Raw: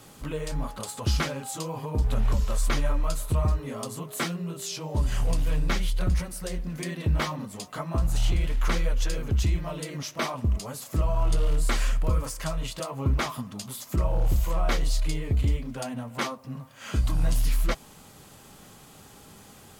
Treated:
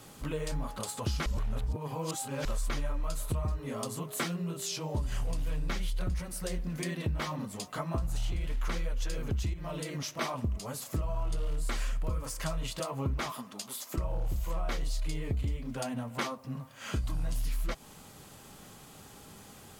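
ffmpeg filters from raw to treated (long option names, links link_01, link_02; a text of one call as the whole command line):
ffmpeg -i in.wav -filter_complex "[0:a]asettb=1/sr,asplit=3[link_01][link_02][link_03];[link_01]atrim=end=9.534[link_04];[link_02]atrim=start=9.53:end=10.21,asetpts=PTS-STARTPTS,afade=type=in:duration=0.004:curve=qsin,afade=type=out:start_time=0.676:duration=0.004:curve=qsin,acompressor=threshold=-30dB:ratio=5:attack=3.2:release=140:knee=1:detection=peak[link_05];[link_03]atrim=start=10.206[link_06];[link_04][link_05]acrossfade=duration=0.004:curve1=hsin:curve2=qsin[link_07];[link_07][link_06]acrossfade=duration=0.004:curve1=qsin:curve2=hsin,asettb=1/sr,asplit=3[link_08][link_09][link_10];[link_08]atrim=end=13.324[link_11];[link_09]atrim=start=13.32:end=13.98,asetpts=PTS-STARTPTS,afade=type=in:duration=0.004:curve=qsin,afade=type=out:start_time=0.656:duration=0.004:curve=qsin,highpass=320[link_12];[link_10]atrim=start=13.976[link_13];[link_11][link_12]acrossfade=duration=0.004:curve1=hsin:curve2=qsin[link_14];[link_14][link_13]acrossfade=duration=0.004:curve1=qsin:curve2=hsin,asplit=3[link_15][link_16][link_17];[link_15]atrim=end=1.262[link_18];[link_16]atrim=start=1.258:end=2.452,asetpts=PTS-STARTPTS,areverse[link_19];[link_17]atrim=start=2.448[link_20];[link_18][link_19]acrossfade=duration=0.004:curve1=hsin:curve2=hsin[link_21];[link_21][link_20]acrossfade=duration=0.004:curve1=hsin:curve2=hsin,acompressor=threshold=-27dB:ratio=6,volume=-1.5dB" out.wav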